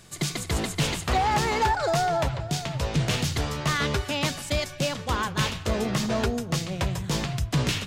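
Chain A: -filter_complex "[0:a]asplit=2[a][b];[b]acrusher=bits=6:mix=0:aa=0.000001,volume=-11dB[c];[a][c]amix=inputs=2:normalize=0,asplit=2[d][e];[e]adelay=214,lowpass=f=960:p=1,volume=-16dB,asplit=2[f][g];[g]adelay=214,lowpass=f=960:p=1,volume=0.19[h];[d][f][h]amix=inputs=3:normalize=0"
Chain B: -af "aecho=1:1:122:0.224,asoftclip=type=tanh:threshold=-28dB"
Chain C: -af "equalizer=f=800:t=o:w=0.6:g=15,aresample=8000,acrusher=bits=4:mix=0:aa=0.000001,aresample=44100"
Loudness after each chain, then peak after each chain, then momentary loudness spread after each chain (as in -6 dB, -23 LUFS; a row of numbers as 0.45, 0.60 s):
-24.0, -32.0, -20.0 LUFS; -13.5, -28.0, -3.5 dBFS; 5, 3, 12 LU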